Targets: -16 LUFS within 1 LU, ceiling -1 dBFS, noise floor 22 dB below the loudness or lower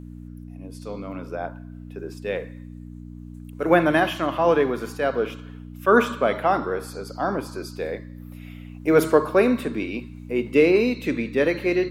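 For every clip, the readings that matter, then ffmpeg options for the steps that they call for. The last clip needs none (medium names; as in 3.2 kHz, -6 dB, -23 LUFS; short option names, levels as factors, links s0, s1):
hum 60 Hz; highest harmonic 300 Hz; hum level -36 dBFS; loudness -22.5 LUFS; peak level -4.0 dBFS; loudness target -16.0 LUFS
-> -af "bandreject=f=60:t=h:w=4,bandreject=f=120:t=h:w=4,bandreject=f=180:t=h:w=4,bandreject=f=240:t=h:w=4,bandreject=f=300:t=h:w=4"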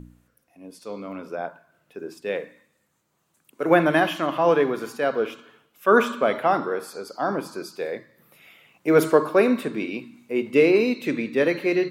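hum not found; loudness -22.5 LUFS; peak level -4.0 dBFS; loudness target -16.0 LUFS
-> -af "volume=2.11,alimiter=limit=0.891:level=0:latency=1"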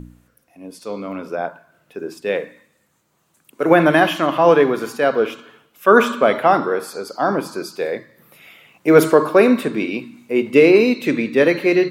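loudness -16.5 LUFS; peak level -1.0 dBFS; noise floor -64 dBFS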